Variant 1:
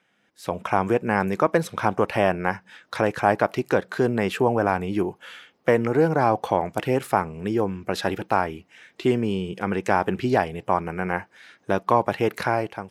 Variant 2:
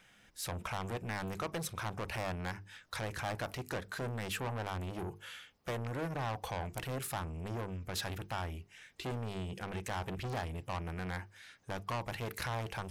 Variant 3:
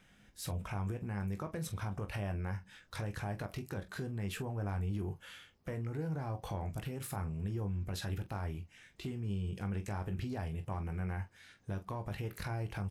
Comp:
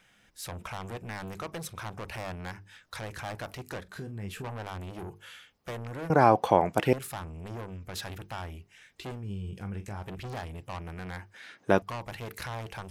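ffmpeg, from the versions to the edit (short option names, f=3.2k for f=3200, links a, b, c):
-filter_complex "[2:a]asplit=2[a][b];[0:a]asplit=2[c][d];[1:a]asplit=5[e][f][g][h][i];[e]atrim=end=3.852[j];[a]atrim=start=3.848:end=4.442[k];[f]atrim=start=4.438:end=6.102[l];[c]atrim=start=6.098:end=6.932[m];[g]atrim=start=6.928:end=9.25[n];[b]atrim=start=9.09:end=10.11[o];[h]atrim=start=9.95:end=11.342[p];[d]atrim=start=11.338:end=11.822[q];[i]atrim=start=11.818[r];[j][k]acrossfade=d=0.004:c1=hsin:c2=hsin[s];[s][l]acrossfade=d=0.004:c1=hsin:c2=hsin[t];[t][m]acrossfade=d=0.004:c1=hsin:c2=hsin[u];[u][n]acrossfade=d=0.004:c1=hsin:c2=hsin[v];[v][o]acrossfade=d=0.16:c1=tri:c2=tri[w];[w][p]acrossfade=d=0.16:c1=tri:c2=tri[x];[x][q]acrossfade=d=0.004:c1=hsin:c2=hsin[y];[y][r]acrossfade=d=0.004:c1=hsin:c2=hsin"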